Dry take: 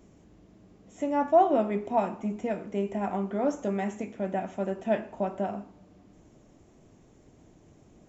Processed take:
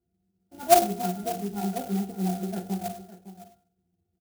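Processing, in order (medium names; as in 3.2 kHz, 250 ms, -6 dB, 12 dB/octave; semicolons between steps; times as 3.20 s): granular stretch 0.52×, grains 143 ms; de-hum 348.6 Hz, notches 38; gate -50 dBFS, range -21 dB; pitch-class resonator F, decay 0.12 s; delay 559 ms -14.5 dB; on a send at -6.5 dB: reverberation RT60 0.45 s, pre-delay 3 ms; on the sum: sampling jitter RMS 0.08 ms; trim +9 dB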